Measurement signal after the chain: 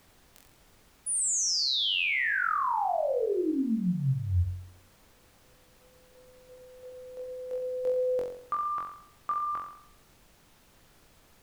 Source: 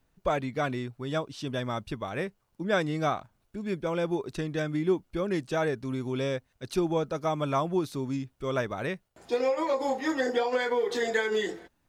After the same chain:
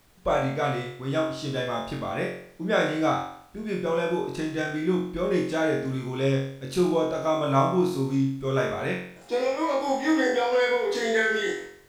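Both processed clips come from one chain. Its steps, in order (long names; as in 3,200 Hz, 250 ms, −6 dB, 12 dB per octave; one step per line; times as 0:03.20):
flutter between parallel walls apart 3.8 metres, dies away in 0.63 s
background noise pink −60 dBFS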